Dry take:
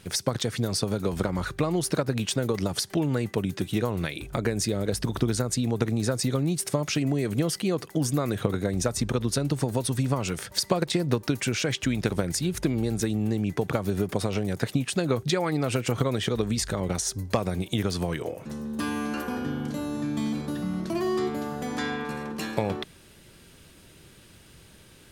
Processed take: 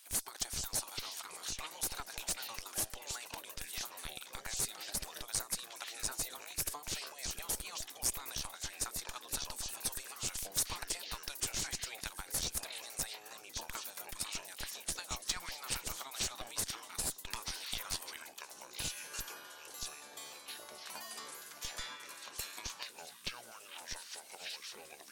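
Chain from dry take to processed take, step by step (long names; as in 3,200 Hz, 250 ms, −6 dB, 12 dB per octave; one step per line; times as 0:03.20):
parametric band 800 Hz +12.5 dB 1.1 octaves
gate on every frequency bin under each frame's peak −10 dB weak
delay with pitch and tempo change per echo 351 ms, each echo −7 semitones, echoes 2
first difference
in parallel at 0 dB: comparator with hysteresis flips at −29 dBFS
on the sum: level −1.5 dB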